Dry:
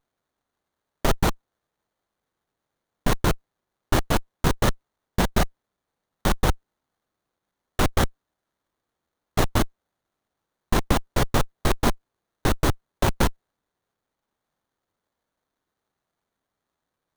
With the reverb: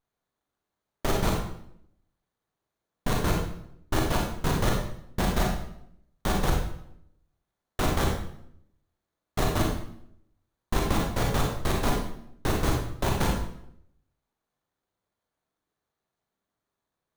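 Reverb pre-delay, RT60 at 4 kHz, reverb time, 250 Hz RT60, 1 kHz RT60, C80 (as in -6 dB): 33 ms, 0.60 s, 0.70 s, 0.90 s, 0.70 s, 6.5 dB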